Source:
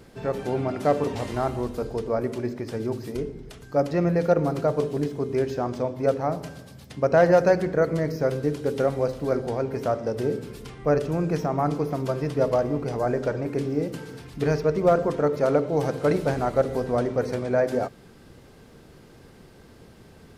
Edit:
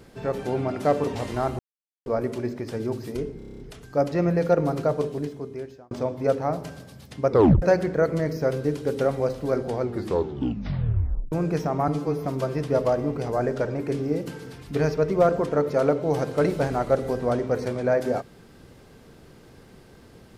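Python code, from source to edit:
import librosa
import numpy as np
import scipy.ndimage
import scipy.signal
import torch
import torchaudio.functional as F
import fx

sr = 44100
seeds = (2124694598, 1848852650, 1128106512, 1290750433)

y = fx.edit(x, sr, fx.silence(start_s=1.59, length_s=0.47),
    fx.stutter(start_s=3.38, slice_s=0.03, count=8),
    fx.fade_out_span(start_s=4.66, length_s=1.04),
    fx.tape_stop(start_s=7.09, length_s=0.32),
    fx.tape_stop(start_s=9.54, length_s=1.57),
    fx.stretch_span(start_s=11.67, length_s=0.25, factor=1.5), tone=tone)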